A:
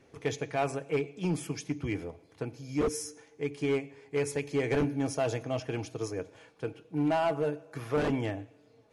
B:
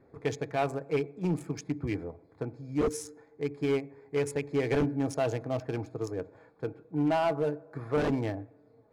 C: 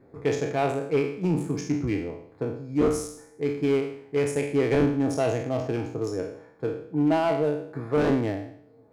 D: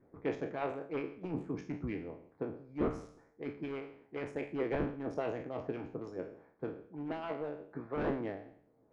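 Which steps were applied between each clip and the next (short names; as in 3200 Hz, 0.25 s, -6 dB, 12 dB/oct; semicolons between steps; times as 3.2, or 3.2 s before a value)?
Wiener smoothing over 15 samples; gain +1 dB
spectral trails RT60 0.62 s; bell 280 Hz +4 dB 2.1 oct; gain +1 dB
LPF 2300 Hz 12 dB/oct; harmonic-percussive split harmonic -15 dB; gain -4.5 dB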